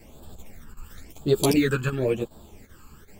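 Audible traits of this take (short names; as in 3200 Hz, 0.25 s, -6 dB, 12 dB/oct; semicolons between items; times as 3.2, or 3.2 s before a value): phasing stages 12, 0.96 Hz, lowest notch 620–2100 Hz; chopped level 2.6 Hz, depth 65%, duty 90%; a shimmering, thickened sound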